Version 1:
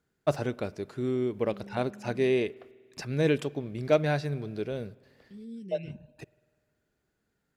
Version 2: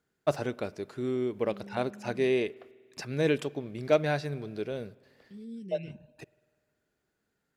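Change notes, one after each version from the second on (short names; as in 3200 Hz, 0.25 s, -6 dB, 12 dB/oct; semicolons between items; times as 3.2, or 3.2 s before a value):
first voice: add low shelf 160 Hz -7 dB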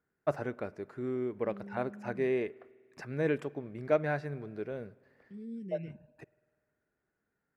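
first voice -4.0 dB; master: add resonant high shelf 2500 Hz -9.5 dB, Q 1.5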